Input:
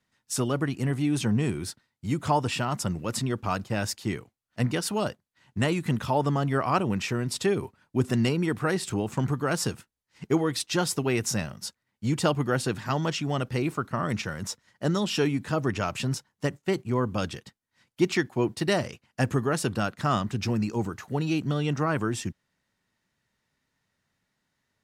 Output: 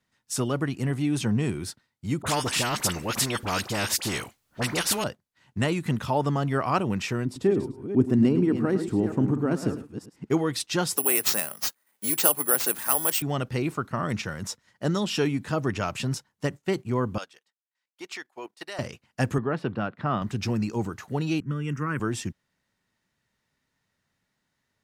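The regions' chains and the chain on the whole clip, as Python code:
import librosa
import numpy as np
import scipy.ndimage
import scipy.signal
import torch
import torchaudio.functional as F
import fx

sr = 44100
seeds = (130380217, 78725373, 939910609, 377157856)

y = fx.chain(x, sr, fx.dispersion(late='highs', ms=45.0, hz=1200.0),
    fx.spectral_comp(ratio=2.0), at=(2.22, 5.04))
y = fx.chain(y, sr, fx.reverse_delay(ms=234, wet_db=-9.0),
    fx.curve_eq(hz=(160.0, 280.0, 500.0, 4000.0), db=(0, 8, -1, -13)),
    fx.echo_single(ms=106, db=-13.0), at=(7.25, 10.3))
y = fx.chain(y, sr, fx.highpass(hz=400.0, slope=12),
    fx.resample_bad(factor=4, down='none', up='zero_stuff'),
    fx.band_squash(depth_pct=40), at=(10.97, 13.22))
y = fx.chain(y, sr, fx.highpass(hz=640.0, slope=12),
    fx.level_steps(step_db=12),
    fx.upward_expand(threshold_db=-58.0, expansion=1.5), at=(17.18, 18.79))
y = fx.chain(y, sr, fx.highpass(hz=110.0, slope=12),
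    fx.air_absorb(metres=390.0), at=(19.38, 20.22))
y = fx.chain(y, sr, fx.fixed_phaser(hz=1700.0, stages=4),
    fx.band_widen(depth_pct=70), at=(21.4, 22.0))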